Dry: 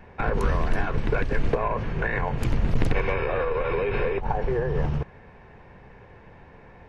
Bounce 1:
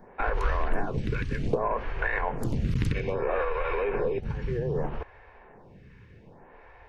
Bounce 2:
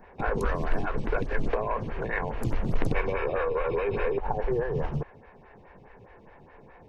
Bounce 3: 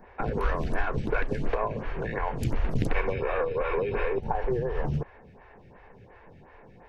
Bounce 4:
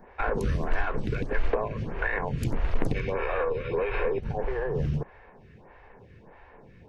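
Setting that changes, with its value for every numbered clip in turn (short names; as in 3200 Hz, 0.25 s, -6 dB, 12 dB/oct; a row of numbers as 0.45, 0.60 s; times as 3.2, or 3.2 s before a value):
photocell phaser, rate: 0.63, 4.8, 2.8, 1.6 Hz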